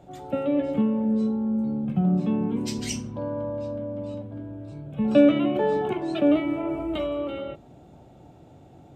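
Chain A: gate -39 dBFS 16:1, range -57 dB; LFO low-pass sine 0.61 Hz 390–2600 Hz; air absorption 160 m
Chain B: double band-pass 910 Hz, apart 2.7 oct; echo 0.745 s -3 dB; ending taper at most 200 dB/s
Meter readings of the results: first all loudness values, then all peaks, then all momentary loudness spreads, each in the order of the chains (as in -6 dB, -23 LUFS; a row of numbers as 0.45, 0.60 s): -24.5, -35.0 LUFS; -6.0, -16.5 dBFS; 14, 16 LU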